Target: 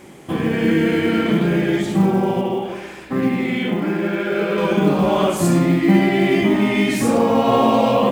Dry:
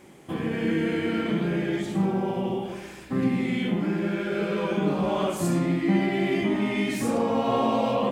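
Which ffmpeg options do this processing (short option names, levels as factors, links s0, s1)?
-filter_complex "[0:a]asettb=1/sr,asplit=3[s0][s1][s2];[s0]atrim=end=2.414[s3];[s1]atrim=start=2.41:end=4.58,asetpts=PTS-STARTPTS,afade=t=in:d=0.004:c=qsin,afade=t=out:st=2.166:d=0.004:c=qsin,bass=f=250:g=-7,treble=f=4000:g=-7[s4];[s2]atrim=start=4.576[s5];[s3][s4]acrossfade=d=0.004:c1=hsin:c2=qsin[s6];[s6][s5]acrossfade=d=0.004:c1=qsin:c2=hsin,acrusher=bits=9:mode=log:mix=0:aa=0.000001,volume=2.66"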